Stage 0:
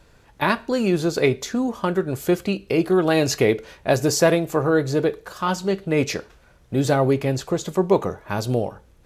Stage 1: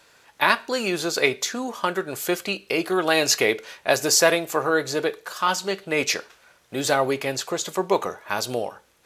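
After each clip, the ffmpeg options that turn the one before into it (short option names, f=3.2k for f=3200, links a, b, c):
-af "highpass=f=1.3k:p=1,volume=6dB"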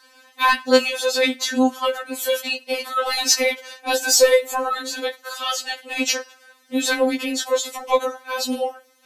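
-af "acontrast=36,afftfilt=real='re*3.46*eq(mod(b,12),0)':imag='im*3.46*eq(mod(b,12),0)':win_size=2048:overlap=0.75"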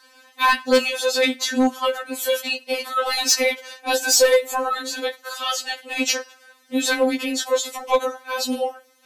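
-af "asoftclip=type=hard:threshold=-9.5dB"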